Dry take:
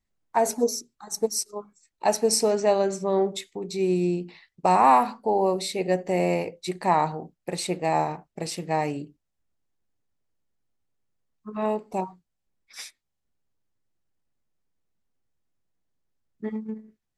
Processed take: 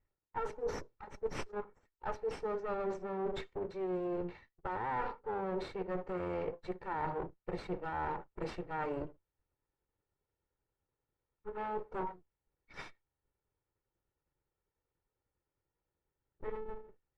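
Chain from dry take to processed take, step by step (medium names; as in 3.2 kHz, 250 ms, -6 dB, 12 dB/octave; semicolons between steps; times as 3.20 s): comb filter that takes the minimum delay 2.2 ms; low-pass 1.7 kHz 12 dB/octave; reverse; compression 8:1, threshold -37 dBFS, peak gain reduction 20 dB; reverse; trim +2.5 dB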